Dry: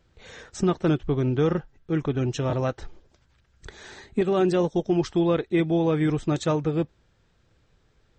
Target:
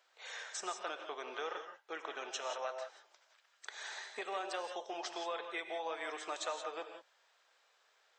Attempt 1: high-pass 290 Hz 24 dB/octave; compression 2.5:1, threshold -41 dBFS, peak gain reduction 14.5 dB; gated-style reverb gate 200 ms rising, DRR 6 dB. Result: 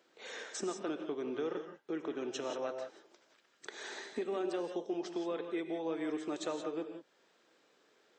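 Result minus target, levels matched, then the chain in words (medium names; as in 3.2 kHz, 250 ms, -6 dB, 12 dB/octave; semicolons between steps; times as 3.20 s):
250 Hz band +13.0 dB
high-pass 660 Hz 24 dB/octave; compression 2.5:1, threshold -41 dBFS, peak gain reduction 11 dB; gated-style reverb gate 200 ms rising, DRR 6 dB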